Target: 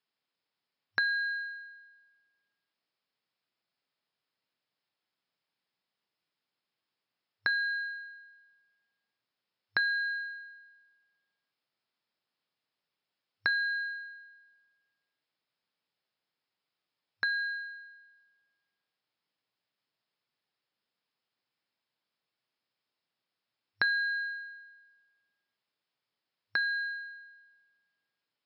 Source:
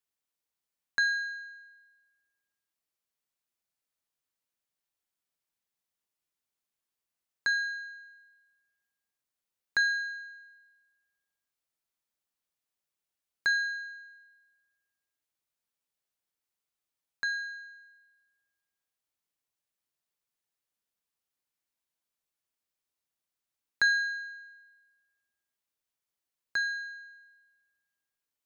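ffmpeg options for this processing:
-af "acompressor=threshold=0.0178:ratio=3,bandreject=f=350.6:t=h:w=4,bandreject=f=701.2:t=h:w=4,bandreject=f=1051.8:t=h:w=4,bandreject=f=1402.4:t=h:w=4,bandreject=f=1753:t=h:w=4,bandreject=f=2103.6:t=h:w=4,bandreject=f=2454.2:t=h:w=4,bandreject=f=2804.8:t=h:w=4,bandreject=f=3155.4:t=h:w=4,bandreject=f=3506:t=h:w=4,bandreject=f=3856.6:t=h:w=4,afftfilt=real='re*between(b*sr/4096,100,5400)':imag='im*between(b*sr/4096,100,5400)':win_size=4096:overlap=0.75,volume=2"

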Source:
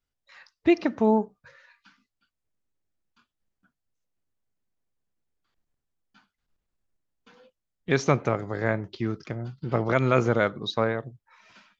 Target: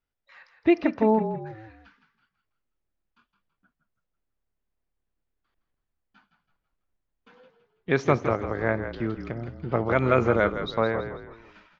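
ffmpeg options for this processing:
-filter_complex "[0:a]bass=f=250:g=-3,treble=f=4000:g=-13,asplit=5[s0][s1][s2][s3][s4];[s1]adelay=164,afreqshift=-36,volume=0.335[s5];[s2]adelay=328,afreqshift=-72,volume=0.13[s6];[s3]adelay=492,afreqshift=-108,volume=0.0507[s7];[s4]adelay=656,afreqshift=-144,volume=0.02[s8];[s0][s5][s6][s7][s8]amix=inputs=5:normalize=0,volume=1.12"

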